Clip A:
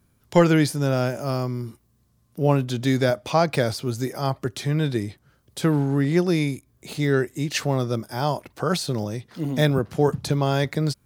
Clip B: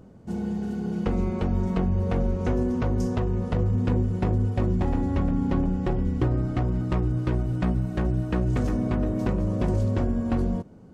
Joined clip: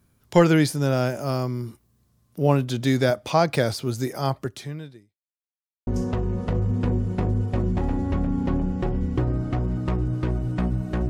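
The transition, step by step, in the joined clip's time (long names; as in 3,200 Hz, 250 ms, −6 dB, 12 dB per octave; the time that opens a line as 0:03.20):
clip A
0:04.34–0:05.19: fade out quadratic
0:05.19–0:05.87: silence
0:05.87: continue with clip B from 0:02.91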